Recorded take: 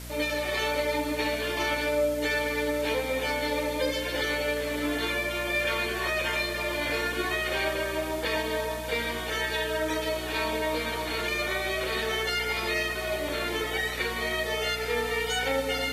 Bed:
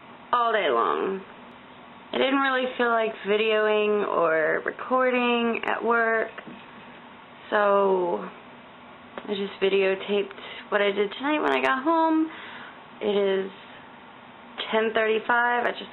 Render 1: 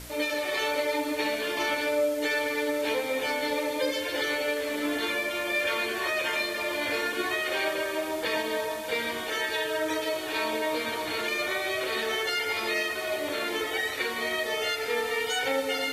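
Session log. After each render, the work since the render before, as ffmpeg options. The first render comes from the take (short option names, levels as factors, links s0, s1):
-af "bandreject=f=60:t=h:w=4,bandreject=f=120:t=h:w=4,bandreject=f=180:t=h:w=4,bandreject=f=240:t=h:w=4"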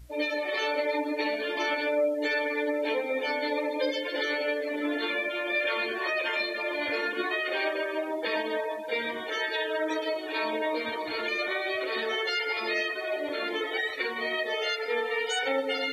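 -af "afftdn=nr=19:nf=-33"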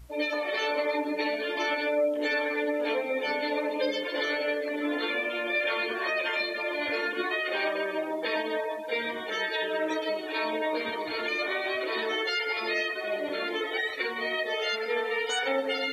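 -filter_complex "[1:a]volume=0.0841[s0];[0:a][s0]amix=inputs=2:normalize=0"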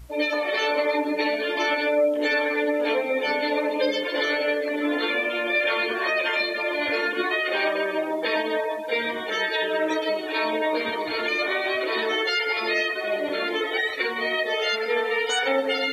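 -af "volume=1.78"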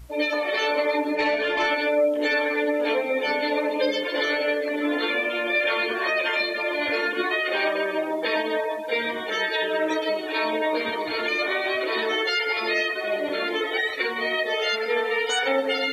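-filter_complex "[0:a]asettb=1/sr,asplit=3[s0][s1][s2];[s0]atrim=end=1.154[s3];[s1]atrim=start=1.15:end=1.67,asetpts=PTS-STARTPTS,afade=t=in:d=0.004:c=qsin,afade=t=out:st=0.516:d=0.004:c=qsin,asplit=2[s4][s5];[s5]highpass=f=720:p=1,volume=3.55,asoftclip=type=tanh:threshold=0.266[s6];[s4][s6]amix=inputs=2:normalize=0,lowpass=f=2100:p=1,volume=0.501[s7];[s2]atrim=start=1.666[s8];[s3][s7]acrossfade=d=0.004:c1=hsin:c2=qsin[s9];[s9][s8]acrossfade=d=0.004:c1=qsin:c2=hsin"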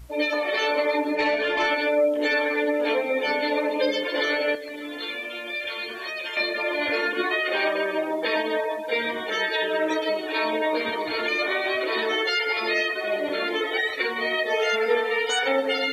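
-filter_complex "[0:a]asettb=1/sr,asplit=3[s0][s1][s2];[s0]atrim=end=4.554[s3];[s1]atrim=start=4.55:end=6.37,asetpts=PTS-STARTPTS,afade=t=in:d=0.004:c=qsin,afade=t=out:st=1.816:d=0.004:c=qsin,acrossover=split=130|3000[s4][s5][s6];[s5]acompressor=threshold=0.0141:ratio=3:attack=3.2:release=140:knee=2.83:detection=peak[s7];[s4][s7][s6]amix=inputs=3:normalize=0[s8];[s2]atrim=start=6.366[s9];[s3][s8]acrossfade=d=0.004:c1=hsin:c2=qsin[s10];[s10][s9]acrossfade=d=0.004:c1=qsin:c2=hsin,asettb=1/sr,asplit=3[s11][s12][s13];[s11]atrim=end=14.504[s14];[s12]atrim=start=14.5:end=14.95,asetpts=PTS-STARTPTS,afade=t=in:d=0.004:c=qsin,afade=t=out:st=0.446:d=0.004:c=qsin,aecho=1:1:4.4:0.68,atrim=end_sample=19845[s15];[s13]atrim=start=14.946[s16];[s14][s15]acrossfade=d=0.004:c1=hsin:c2=qsin[s17];[s17][s16]acrossfade=d=0.004:c1=qsin:c2=hsin"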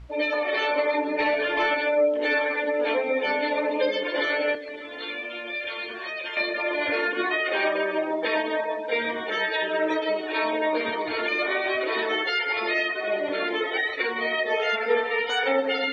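-af "lowpass=3500,bandreject=f=73.57:t=h:w=4,bandreject=f=147.14:t=h:w=4,bandreject=f=220.71:t=h:w=4,bandreject=f=294.28:t=h:w=4,bandreject=f=367.85:t=h:w=4,bandreject=f=441.42:t=h:w=4"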